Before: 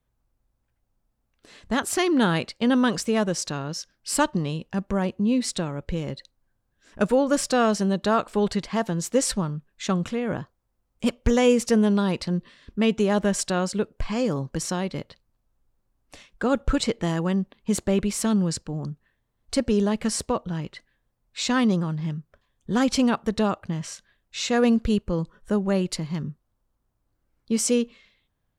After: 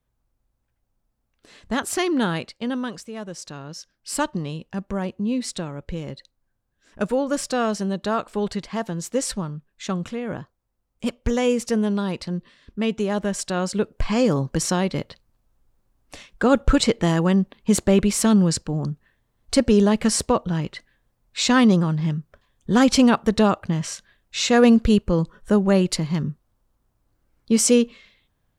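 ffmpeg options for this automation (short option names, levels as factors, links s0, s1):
-af "volume=7.94,afade=t=out:st=2.01:d=1.09:silence=0.237137,afade=t=in:st=3.1:d=1.1:silence=0.298538,afade=t=in:st=13.43:d=0.7:silence=0.421697"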